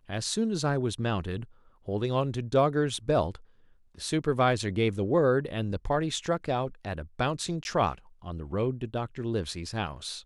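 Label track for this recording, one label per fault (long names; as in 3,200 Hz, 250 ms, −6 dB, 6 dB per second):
7.640000	7.650000	drop-out 11 ms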